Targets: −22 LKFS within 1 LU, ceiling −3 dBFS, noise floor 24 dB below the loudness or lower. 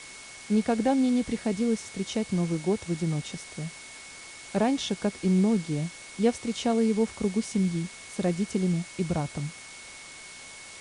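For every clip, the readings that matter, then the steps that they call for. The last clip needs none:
interfering tone 2,200 Hz; level of the tone −47 dBFS; background noise floor −45 dBFS; target noise floor −52 dBFS; integrated loudness −28.0 LKFS; sample peak −12.0 dBFS; target loudness −22.0 LKFS
→ notch filter 2,200 Hz, Q 30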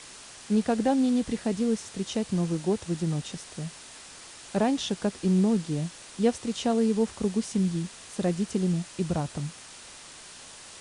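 interfering tone none found; background noise floor −47 dBFS; target noise floor −52 dBFS
→ broadband denoise 6 dB, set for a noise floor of −47 dBFS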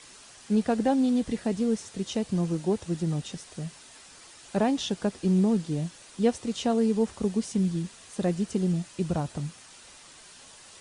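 background noise floor −51 dBFS; target noise floor −52 dBFS
→ broadband denoise 6 dB, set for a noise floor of −51 dBFS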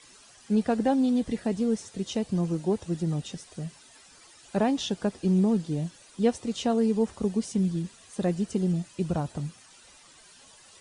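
background noise floor −54 dBFS; integrated loudness −28.0 LKFS; sample peak −12.0 dBFS; target loudness −22.0 LKFS
→ level +6 dB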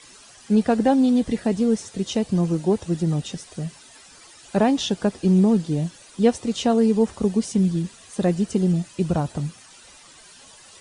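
integrated loudness −22.0 LKFS; sample peak −6.0 dBFS; background noise floor −48 dBFS

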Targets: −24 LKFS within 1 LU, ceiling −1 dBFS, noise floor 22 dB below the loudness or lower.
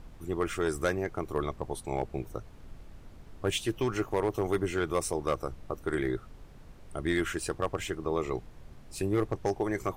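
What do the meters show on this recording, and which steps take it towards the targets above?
share of clipped samples 0.5%; peaks flattened at −20.0 dBFS; background noise floor −51 dBFS; target noise floor −55 dBFS; integrated loudness −32.5 LKFS; sample peak −20.0 dBFS; target loudness −24.0 LKFS
→ clipped peaks rebuilt −20 dBFS
noise reduction from a noise print 6 dB
level +8.5 dB

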